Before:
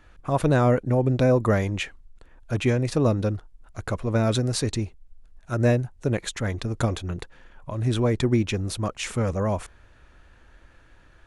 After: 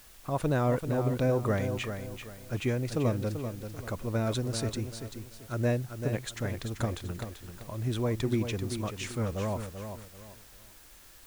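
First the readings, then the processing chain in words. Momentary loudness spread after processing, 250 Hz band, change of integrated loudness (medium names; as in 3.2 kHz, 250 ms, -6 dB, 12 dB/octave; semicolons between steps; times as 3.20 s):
17 LU, -7.0 dB, -7.5 dB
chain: word length cut 8-bit, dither triangular; bit-crushed delay 388 ms, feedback 35%, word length 8-bit, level -8 dB; trim -7.5 dB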